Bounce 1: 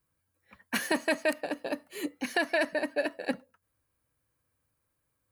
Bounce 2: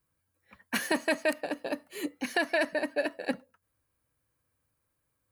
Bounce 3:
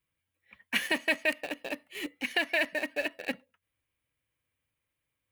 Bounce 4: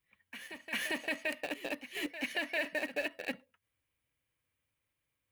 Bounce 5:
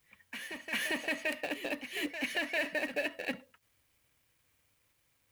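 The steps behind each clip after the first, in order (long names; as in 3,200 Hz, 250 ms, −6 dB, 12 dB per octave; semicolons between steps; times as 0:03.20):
no processing that can be heard
flat-topped bell 2,600 Hz +11 dB 1.1 octaves; in parallel at −9.5 dB: bit reduction 5 bits; on the sum: level −7 dB
brickwall limiter −23.5 dBFS, peak gain reduction 10 dB; backwards echo 398 ms −11.5 dB; level −1 dB
mu-law and A-law mismatch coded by mu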